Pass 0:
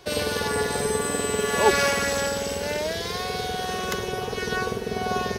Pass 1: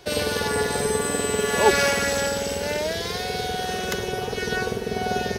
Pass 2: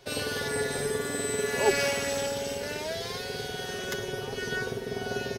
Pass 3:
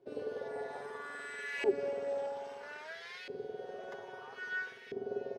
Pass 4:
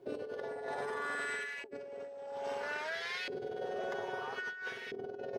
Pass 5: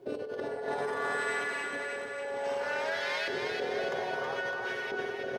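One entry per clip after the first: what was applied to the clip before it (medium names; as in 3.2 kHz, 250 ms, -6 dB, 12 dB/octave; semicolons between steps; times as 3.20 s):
band-stop 1.1 kHz, Q 13; trim +1.5 dB
comb 7.5 ms, depth 57%; trim -7.5 dB
LFO band-pass saw up 0.61 Hz 330–2400 Hz; trim -2.5 dB
compressor with a negative ratio -45 dBFS, ratio -1; trim +4 dB
bouncing-ball echo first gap 320 ms, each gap 0.9×, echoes 5; trim +4 dB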